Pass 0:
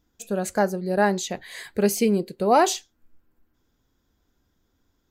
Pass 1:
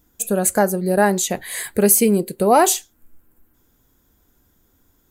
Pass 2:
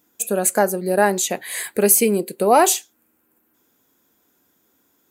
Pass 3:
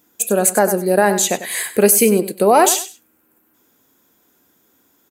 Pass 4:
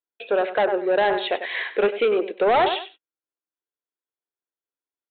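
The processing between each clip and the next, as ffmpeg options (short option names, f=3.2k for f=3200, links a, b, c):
-filter_complex "[0:a]highshelf=f=7.1k:t=q:w=1.5:g=11,asplit=2[a][b];[b]acompressor=threshold=-25dB:ratio=6,volume=1dB[c];[a][c]amix=inputs=2:normalize=0,volume=1.5dB"
-af "highpass=240,equalizer=f=2.5k:t=o:w=0.28:g=4"
-af "aecho=1:1:97|194:0.224|0.0448,alimiter=level_in=5.5dB:limit=-1dB:release=50:level=0:latency=1,volume=-1dB"
-af "highpass=f=370:w=0.5412,highpass=f=370:w=1.3066,agate=range=-36dB:threshold=-35dB:ratio=16:detection=peak,aresample=8000,asoftclip=type=tanh:threshold=-14dB,aresample=44100"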